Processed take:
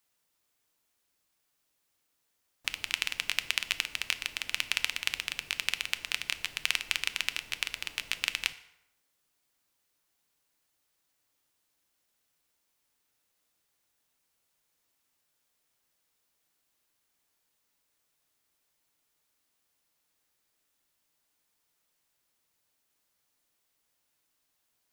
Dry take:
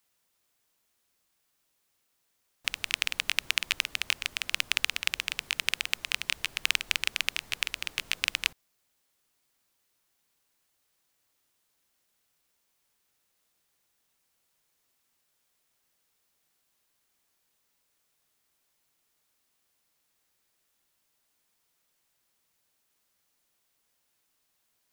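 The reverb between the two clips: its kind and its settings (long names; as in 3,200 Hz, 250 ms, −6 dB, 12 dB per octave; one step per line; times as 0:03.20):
feedback delay network reverb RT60 0.89 s, high-frequency decay 0.7×, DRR 11 dB
level −2.5 dB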